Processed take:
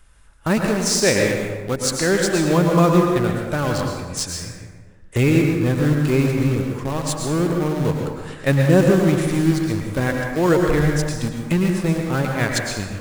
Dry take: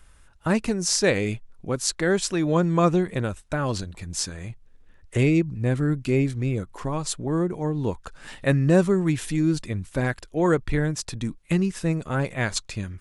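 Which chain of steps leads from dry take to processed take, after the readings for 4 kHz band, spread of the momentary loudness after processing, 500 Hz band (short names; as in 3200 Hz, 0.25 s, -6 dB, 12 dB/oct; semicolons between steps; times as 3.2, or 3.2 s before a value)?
+5.0 dB, 10 LU, +5.5 dB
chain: in parallel at -8.5 dB: bit-crush 4-bit; on the sum: plate-style reverb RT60 1.4 s, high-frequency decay 0.55×, pre-delay 95 ms, DRR 1 dB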